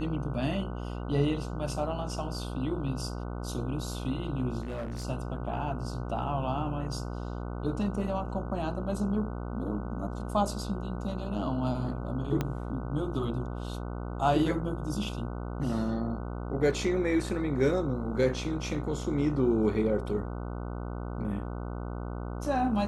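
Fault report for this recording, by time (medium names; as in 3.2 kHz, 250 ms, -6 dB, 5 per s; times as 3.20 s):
buzz 60 Hz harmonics 25 -36 dBFS
4.61–5.05 s: clipped -32 dBFS
12.41 s: pop -16 dBFS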